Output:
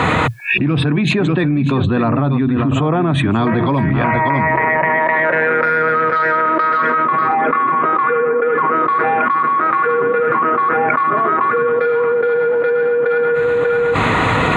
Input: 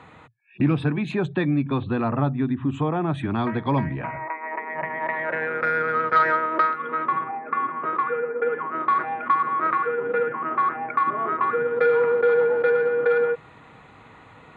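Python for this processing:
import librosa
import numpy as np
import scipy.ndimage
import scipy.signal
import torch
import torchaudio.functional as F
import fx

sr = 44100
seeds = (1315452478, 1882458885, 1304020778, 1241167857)

p1 = fx.notch(x, sr, hz=840.0, q=12.0)
p2 = p1 + fx.echo_single(p1, sr, ms=591, db=-12.0, dry=0)
y = fx.env_flatten(p2, sr, amount_pct=100)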